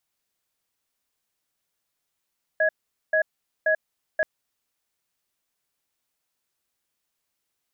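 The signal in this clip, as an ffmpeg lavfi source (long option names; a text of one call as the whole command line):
ffmpeg -f lavfi -i "aevalsrc='0.0944*(sin(2*PI*630*t)+sin(2*PI*1670*t))*clip(min(mod(t,0.53),0.09-mod(t,0.53))/0.005,0,1)':duration=1.63:sample_rate=44100" out.wav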